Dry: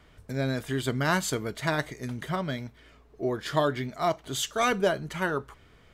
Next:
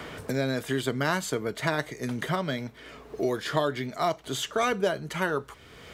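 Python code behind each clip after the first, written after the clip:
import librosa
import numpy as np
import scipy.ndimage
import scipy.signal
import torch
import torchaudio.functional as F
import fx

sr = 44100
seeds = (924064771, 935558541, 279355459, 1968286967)

y = fx.highpass(x, sr, hz=130.0, slope=6)
y = fx.peak_eq(y, sr, hz=470.0, db=3.0, octaves=0.38)
y = fx.band_squash(y, sr, depth_pct=70)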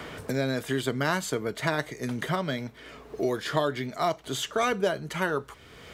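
y = x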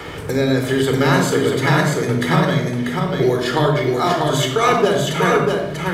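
y = x + 10.0 ** (-3.5 / 20.0) * np.pad(x, (int(640 * sr / 1000.0), 0))[:len(x)]
y = fx.room_shoebox(y, sr, seeds[0], volume_m3=3100.0, walls='furnished', distance_m=4.1)
y = F.gain(torch.from_numpy(y), 6.0).numpy()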